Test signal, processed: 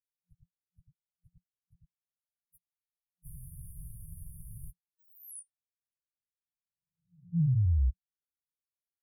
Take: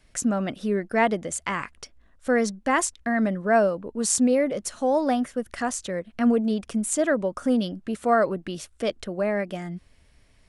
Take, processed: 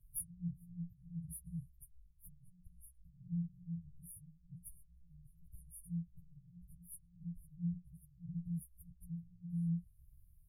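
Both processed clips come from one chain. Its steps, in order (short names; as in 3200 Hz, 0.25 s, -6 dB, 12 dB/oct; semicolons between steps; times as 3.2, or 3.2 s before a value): inharmonic rescaling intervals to 110%; treble ducked by the level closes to 2200 Hz, closed at -22 dBFS; FFT band-reject 180–9300 Hz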